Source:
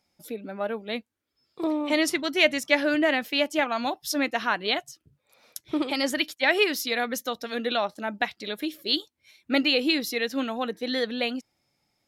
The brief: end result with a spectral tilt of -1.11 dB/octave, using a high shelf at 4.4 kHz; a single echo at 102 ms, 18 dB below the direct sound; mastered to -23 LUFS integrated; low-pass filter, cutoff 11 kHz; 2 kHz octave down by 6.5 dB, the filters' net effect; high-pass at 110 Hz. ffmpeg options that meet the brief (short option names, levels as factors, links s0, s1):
-af "highpass=110,lowpass=11000,equalizer=f=2000:t=o:g=-6.5,highshelf=f=4400:g=-7,aecho=1:1:102:0.126,volume=1.88"